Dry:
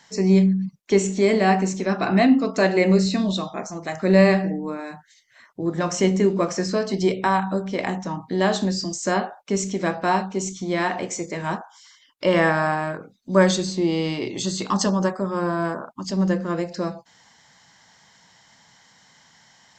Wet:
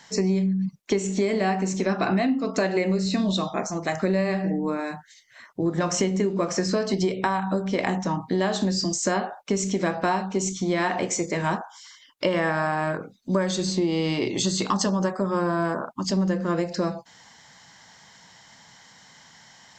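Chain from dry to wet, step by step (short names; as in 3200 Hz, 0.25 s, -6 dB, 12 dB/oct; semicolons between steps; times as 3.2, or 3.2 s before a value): compressor 12:1, threshold -23 dBFS, peak gain reduction 14 dB; gain +3.5 dB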